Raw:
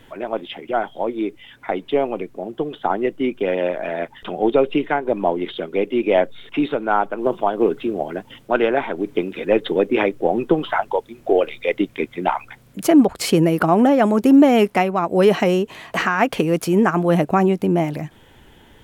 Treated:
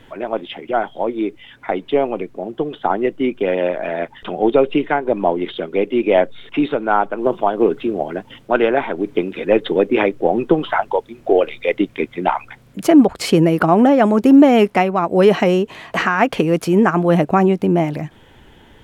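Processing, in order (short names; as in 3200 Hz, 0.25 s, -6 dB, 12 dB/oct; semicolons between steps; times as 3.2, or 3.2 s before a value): high shelf 7900 Hz -9 dB; gain +2.5 dB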